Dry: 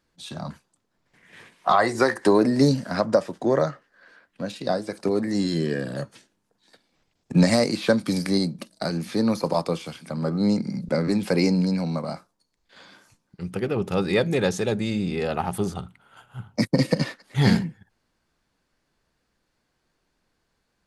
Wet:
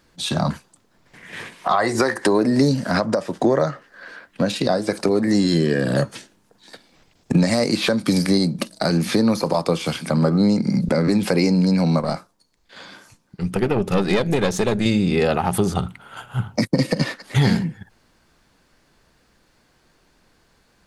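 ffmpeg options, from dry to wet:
-filter_complex "[0:a]asettb=1/sr,asplit=3[a][b][c];[a]atrim=end=12.004[d];[b]atrim=start=12:end=14.86,asetpts=PTS-STARTPTS,afade=t=in:d=0.004:c=qsin,afade=t=out:st=2.856:d=0.004:c=qsin,aeval=exprs='(tanh(6.31*val(0)+0.8)-tanh(0.8))/6.31':c=same[e];[c]atrim=start=14.856[f];[d][e]acrossfade=d=0.004:c1=hsin:c2=qsin[g];[g][f]acrossfade=d=0.004:c1=qsin:c2=hsin,acompressor=threshold=-28dB:ratio=6,alimiter=level_in=19.5dB:limit=-1dB:release=50:level=0:latency=1,volume=-6dB"

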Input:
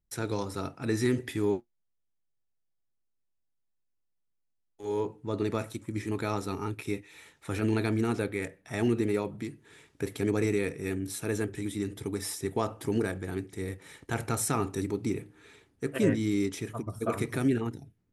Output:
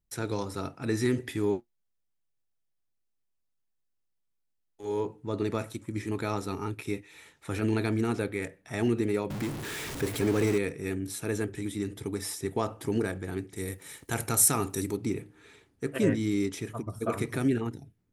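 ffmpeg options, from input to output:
-filter_complex "[0:a]asettb=1/sr,asplit=3[a][b][c];[a]atrim=end=9.304[d];[b]atrim=start=9.3:end=10.58,asetpts=PTS-STARTPTS,afade=t=in:d=0.004:c=qsin,afade=t=out:st=1.276:d=0.004:c=qsin,aeval=exprs='val(0)+0.5*0.0266*sgn(val(0))':c=same[e];[c]atrim=start=10.576[f];[d][e]acrossfade=d=0.004:c1=hsin:c2=qsin[g];[g][f]acrossfade=d=0.004:c1=qsin:c2=hsin,asettb=1/sr,asplit=3[h][i][j];[h]atrim=end=13.564[k];[i]atrim=start=13.56:end=14.97,asetpts=PTS-STARTPTS,afade=t=in:d=0.004:c=qsin,afade=t=out:st=1.406:d=0.004:c=qsin,aemphasis=mode=production:type=50fm[l];[j]atrim=start=14.966[m];[k][l]acrossfade=d=0.004:c1=hsin:c2=qsin[n];[n][m]acrossfade=d=0.004:c1=qsin:c2=hsin"

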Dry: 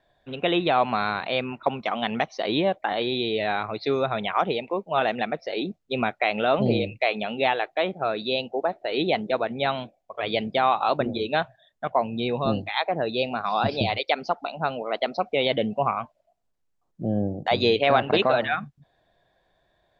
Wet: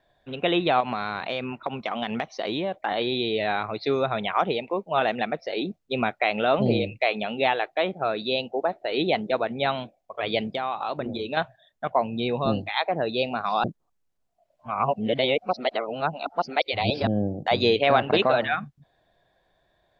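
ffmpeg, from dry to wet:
-filter_complex "[0:a]asettb=1/sr,asplit=3[a][b][c];[a]atrim=end=0.804[d];[b]atrim=start=0.8:end=2.86,asetpts=PTS-STARTPTS,afade=t=in:d=0.004:c=qsin,afade=t=out:st=2.056:d=0.004:c=qsin,acompressor=threshold=-23dB:ratio=6:attack=3.2:release=140:knee=1:detection=peak[e];[c]atrim=start=2.856[f];[d][e]acrossfade=d=0.004:c1=hsin:c2=qsin[g];[g][f]acrossfade=d=0.004:c1=qsin:c2=hsin,asettb=1/sr,asplit=3[h][i][j];[h]atrim=end=10.454[k];[i]atrim=start=10.45:end=11.37,asetpts=PTS-STARTPTS,afade=t=in:d=0.004:c=qsin,afade=t=out:st=0.916:d=0.004:c=qsin,acompressor=threshold=-27dB:ratio=2.5:attack=3.2:release=140:knee=1:detection=peak[l];[j]atrim=start=11.366[m];[k][l]acrossfade=d=0.004:c1=hsin:c2=qsin[n];[n][m]acrossfade=d=0.004:c1=qsin:c2=hsin,asplit=3[o][p][q];[o]atrim=end=13.642[r];[p]atrim=start=13.638:end=17.072,asetpts=PTS-STARTPTS,areverse[s];[q]atrim=start=17.068[t];[r][s]acrossfade=d=0.004:c1=hsin:c2=hsin[u];[u][t]acrossfade=d=0.004:c1=hsin:c2=hsin"

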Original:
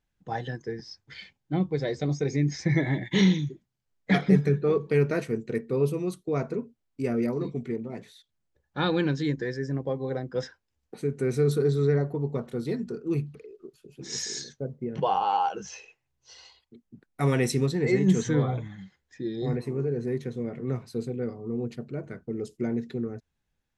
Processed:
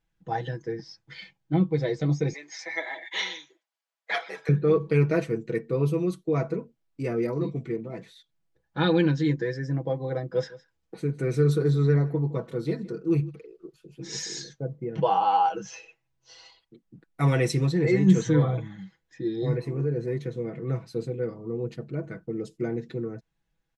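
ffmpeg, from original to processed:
-filter_complex "[0:a]asettb=1/sr,asplit=3[a][b][c];[a]atrim=end=2.334[d];[b]atrim=start=2.33:end=4.49,asetpts=PTS-STARTPTS,afade=t=in:d=0.004:c=qsin,afade=t=out:st=2.156:d=0.004:c=qsin,highpass=f=620:w=0.5412,highpass=f=620:w=1.3066[e];[c]atrim=start=4.486[f];[d][e]acrossfade=d=0.004:c1=hsin:c2=qsin[g];[g][f]acrossfade=d=0.004:c1=qsin:c2=hsin,asplit=3[h][i][j];[h]afade=t=out:st=10.31:d=0.02[k];[i]aecho=1:1:162:0.106,afade=t=in:st=10.31:d=0.02,afade=t=out:st=13.29:d=0.02[l];[j]afade=t=in:st=13.29:d=0.02[m];[k][l][m]amix=inputs=3:normalize=0,highshelf=f=7.6k:g=-9,aecho=1:1:6.1:0.69"

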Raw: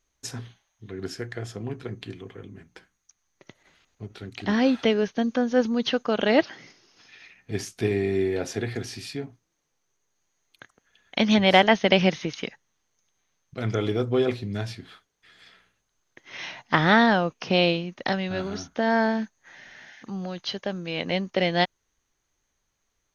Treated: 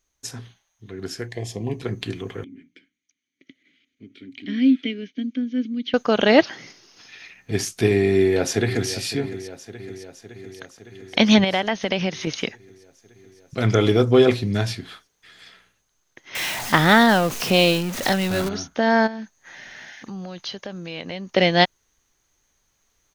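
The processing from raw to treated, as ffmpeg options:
-filter_complex "[0:a]asettb=1/sr,asplit=3[a][b][c];[a]atrim=end=1.284[d];[b]atrim=start=1.28:end=1.82,asetpts=PTS-STARTPTS,afade=t=in:d=0.004:c=qsin,afade=t=out:st=0.536:d=0.004:c=qsin,asuperstop=centerf=1400:order=4:qfactor=1.7[e];[c]atrim=start=1.816[f];[d][e]acrossfade=d=0.004:c1=hsin:c2=qsin[g];[g][f]acrossfade=d=0.004:c1=qsin:c2=hsin,asettb=1/sr,asplit=3[h][i][j];[h]atrim=end=2.444[k];[i]atrim=start=2.44:end=5.94,asetpts=PTS-STARTPTS,afade=t=in:d=0.004:c=qsin,afade=t=out:st=3.496:d=0.004:c=qsin,asplit=3[l][m][n];[l]bandpass=f=270:t=q:w=8,volume=0dB[o];[m]bandpass=f=2.29k:t=q:w=8,volume=-6dB[p];[n]bandpass=f=3.01k:t=q:w=8,volume=-9dB[q];[o][p][q]amix=inputs=3:normalize=0[r];[j]atrim=start=5.936[s];[k][r]acrossfade=d=0.004:c1=hsin:c2=qsin[t];[t][s]acrossfade=d=0.004:c1=qsin:c2=hsin,asplit=2[u][v];[v]afade=t=in:st=8.11:d=0.01,afade=t=out:st=8.91:d=0.01,aecho=0:1:560|1120|1680|2240|2800|3360|3920|4480|5040|5600|6160:0.199526|0.149645|0.112234|0.0841751|0.0631313|0.0473485|0.0355114|0.0266335|0.0199752|0.0149814|0.011236[w];[u][w]amix=inputs=2:normalize=0,asettb=1/sr,asplit=3[x][y][z];[x]atrim=end=11.444[aa];[y]atrim=start=11.44:end=12.27,asetpts=PTS-STARTPTS,afade=t=in:d=0.004:c=qsin,afade=t=out:st=0.826:d=0.004:c=qsin,acompressor=threshold=-31dB:ratio=2:attack=3.2:release=140:knee=1:detection=peak[ab];[z]atrim=start=12.266[ac];[aa][ab]acrossfade=d=0.004:c1=hsin:c2=qsin[ad];[ad][ac]acrossfade=d=0.004:c1=qsin:c2=hsin,asettb=1/sr,asplit=3[ae][af][ag];[ae]atrim=end=16.354[ah];[af]atrim=start=16.35:end=18.49,asetpts=PTS-STARTPTS,afade=t=in:d=0.004:c=qsin,afade=t=out:st=2.136:d=0.004:c=qsin,aeval=exprs='val(0)+0.5*0.0355*sgn(val(0))':c=same[ai];[ag]atrim=start=18.486[aj];[ah][ai]acrossfade=d=0.004:c1=hsin:c2=qsin[ak];[ak][aj]acrossfade=d=0.004:c1=qsin:c2=hsin,asplit=3[al][am][an];[al]afade=t=out:st=19.06:d=0.02[ao];[am]acompressor=threshold=-39dB:ratio=2.5:attack=3.2:release=140:knee=1:detection=peak,afade=t=in:st=19.06:d=0.02,afade=t=out:st=21.29:d=0.02[ap];[an]afade=t=in:st=21.29:d=0.02[aq];[ao][ap][aq]amix=inputs=3:normalize=0,highshelf=f=5.5k:g=6,dynaudnorm=f=210:g=17:m=11.5dB,volume=-1dB"

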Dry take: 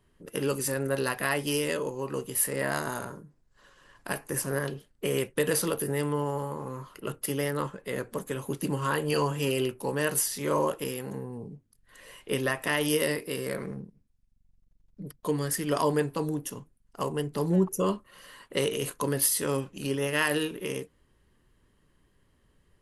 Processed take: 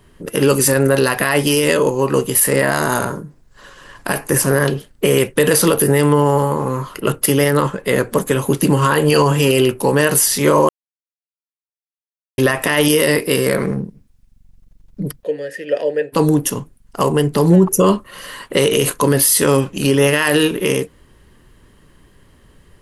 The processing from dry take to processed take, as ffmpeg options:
-filter_complex "[0:a]asplit=3[a][b][c];[a]afade=t=out:st=15.22:d=0.02[d];[b]asplit=3[e][f][g];[e]bandpass=f=530:t=q:w=8,volume=0dB[h];[f]bandpass=f=1.84k:t=q:w=8,volume=-6dB[i];[g]bandpass=f=2.48k:t=q:w=8,volume=-9dB[j];[h][i][j]amix=inputs=3:normalize=0,afade=t=in:st=15.22:d=0.02,afade=t=out:st=16.12:d=0.02[k];[c]afade=t=in:st=16.12:d=0.02[l];[d][k][l]amix=inputs=3:normalize=0,asplit=3[m][n][o];[m]atrim=end=10.69,asetpts=PTS-STARTPTS,afade=t=out:st=10.686:d=0.004:c=hsin[p];[n]atrim=start=10.69:end=12.38,asetpts=PTS-STARTPTS,volume=0[q];[o]atrim=start=12.38,asetpts=PTS-STARTPTS,afade=t=in:d=0.004:c=hsin[r];[p][q][r]concat=n=3:v=0:a=1,alimiter=level_in=19.5dB:limit=-1dB:release=50:level=0:latency=1,volume=-2.5dB"

